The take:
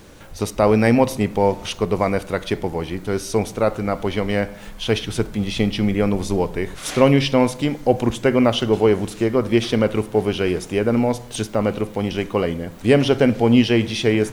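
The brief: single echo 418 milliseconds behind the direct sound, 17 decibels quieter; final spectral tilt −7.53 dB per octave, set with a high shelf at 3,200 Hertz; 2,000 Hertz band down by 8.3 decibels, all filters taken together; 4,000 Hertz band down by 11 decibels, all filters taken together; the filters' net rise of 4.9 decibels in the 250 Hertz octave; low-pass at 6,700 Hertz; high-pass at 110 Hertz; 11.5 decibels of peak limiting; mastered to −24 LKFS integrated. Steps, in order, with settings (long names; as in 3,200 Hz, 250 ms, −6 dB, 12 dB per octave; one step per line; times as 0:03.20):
high-pass filter 110 Hz
low-pass filter 6,700 Hz
parametric band 250 Hz +6 dB
parametric band 2,000 Hz −6 dB
high-shelf EQ 3,200 Hz −7.5 dB
parametric band 4,000 Hz −7 dB
brickwall limiter −10.5 dBFS
single-tap delay 418 ms −17 dB
level −2 dB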